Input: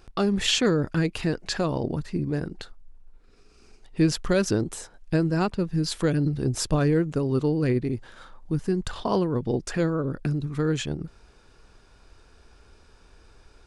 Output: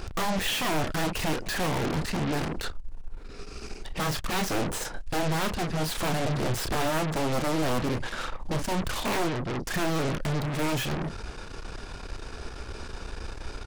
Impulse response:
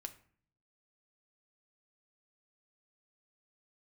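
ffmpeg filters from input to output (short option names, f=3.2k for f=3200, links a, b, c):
-filter_complex "[0:a]acrossover=split=2900[a][b];[b]acompressor=threshold=-41dB:ratio=4:attack=1:release=60[c];[a][c]amix=inputs=2:normalize=0,highshelf=f=9.3k:g=-5.5,asettb=1/sr,asplit=3[d][e][f];[d]atrim=end=9.294[g];[e]atrim=start=9.29:end=9.71,asetpts=PTS-STARTPTS,afade=t=in:d=0.004:c=qsin,afade=t=out:st=0.416:d=0.004:c=qsin,acompressor=threshold=-32dB:ratio=16[h];[f]atrim=start=9.706[i];[g][h]acrossfade=d=0.004:c1=hsin:c2=qsin[j];[j][i]acrossfade=d=0.004:c1=qsin:c2=hsin,aeval=exprs='0.112*sin(PI/2*1.78*val(0)/0.112)':c=same,asplit=2[k][l];[l]adelay=32,volume=-9.5dB[m];[k][m]amix=inputs=2:normalize=0,asoftclip=type=tanh:threshold=-27dB,aeval=exprs='0.0447*(cos(1*acos(clip(val(0)/0.0447,-1,1)))-cos(1*PI/2))+0.00501*(cos(4*acos(clip(val(0)/0.0447,-1,1)))-cos(4*PI/2))+0.0126*(cos(5*acos(clip(val(0)/0.0447,-1,1)))-cos(5*PI/2))+0.02*(cos(6*acos(clip(val(0)/0.0447,-1,1)))-cos(6*PI/2))+0.00562*(cos(8*acos(clip(val(0)/0.0447,-1,1)))-cos(8*PI/2))':c=same"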